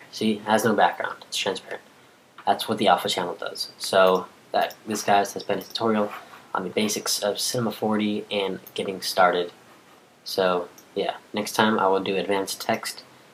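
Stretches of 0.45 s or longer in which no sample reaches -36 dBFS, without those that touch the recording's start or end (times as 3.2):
1.77–2.38
9.49–10.26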